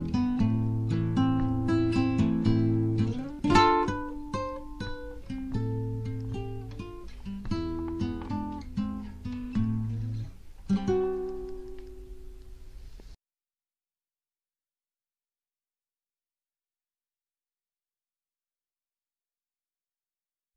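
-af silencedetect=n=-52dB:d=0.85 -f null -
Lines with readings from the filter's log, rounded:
silence_start: 13.15
silence_end: 20.57 | silence_duration: 7.42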